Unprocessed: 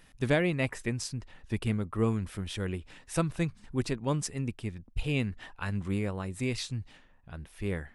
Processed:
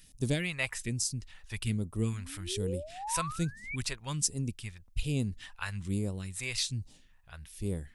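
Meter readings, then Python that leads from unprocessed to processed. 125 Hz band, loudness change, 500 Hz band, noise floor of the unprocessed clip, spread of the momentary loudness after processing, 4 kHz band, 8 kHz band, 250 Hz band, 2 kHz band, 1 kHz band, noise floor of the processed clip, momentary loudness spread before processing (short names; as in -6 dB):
-2.0 dB, -1.5 dB, -6.5 dB, -59 dBFS, 10 LU, +3.5 dB, +7.5 dB, -4.0 dB, -1.5 dB, 0.0 dB, -59 dBFS, 10 LU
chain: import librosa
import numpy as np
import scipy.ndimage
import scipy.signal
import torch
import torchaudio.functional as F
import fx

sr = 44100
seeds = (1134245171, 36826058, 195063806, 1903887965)

y = fx.high_shelf(x, sr, hz=4700.0, db=11.0)
y = fx.spec_paint(y, sr, seeds[0], shape='rise', start_s=2.13, length_s=1.63, low_hz=210.0, high_hz=2400.0, level_db=-33.0)
y = fx.phaser_stages(y, sr, stages=2, low_hz=230.0, high_hz=1800.0, hz=1.2, feedback_pct=40)
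y = y * 10.0 ** (-2.0 / 20.0)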